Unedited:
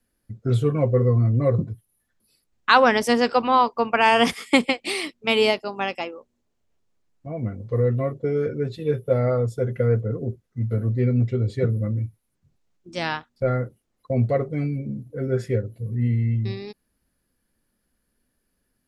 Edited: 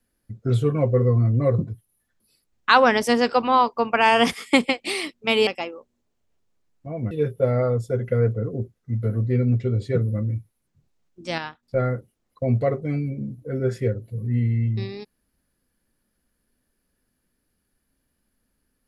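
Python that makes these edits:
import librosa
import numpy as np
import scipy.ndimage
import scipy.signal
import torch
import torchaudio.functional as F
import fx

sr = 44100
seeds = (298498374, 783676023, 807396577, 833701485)

y = fx.edit(x, sr, fx.cut(start_s=5.47, length_s=0.4),
    fx.cut(start_s=7.51, length_s=1.28),
    fx.clip_gain(start_s=13.06, length_s=0.25, db=-6.0), tone=tone)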